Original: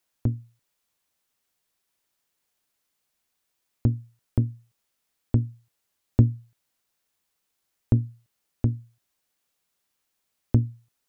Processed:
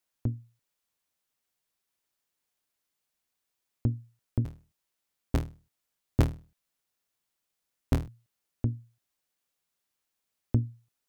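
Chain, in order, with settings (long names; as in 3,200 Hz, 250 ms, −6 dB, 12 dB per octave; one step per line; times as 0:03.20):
0:04.44–0:08.08: sub-harmonics by changed cycles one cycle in 3, inverted
level −5.5 dB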